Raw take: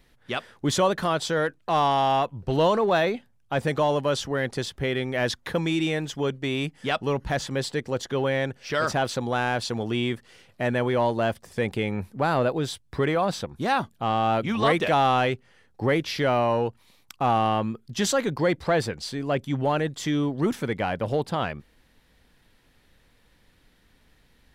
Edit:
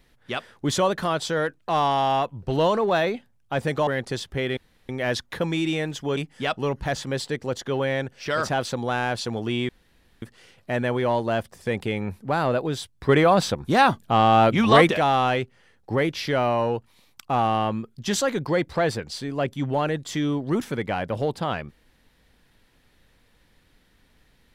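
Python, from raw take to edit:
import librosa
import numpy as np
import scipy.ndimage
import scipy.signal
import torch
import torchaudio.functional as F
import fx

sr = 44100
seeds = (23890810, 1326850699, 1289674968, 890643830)

y = fx.edit(x, sr, fx.cut(start_s=3.87, length_s=0.46),
    fx.insert_room_tone(at_s=5.03, length_s=0.32),
    fx.cut(start_s=6.31, length_s=0.3),
    fx.insert_room_tone(at_s=10.13, length_s=0.53),
    fx.clip_gain(start_s=13.0, length_s=1.82, db=6.5), tone=tone)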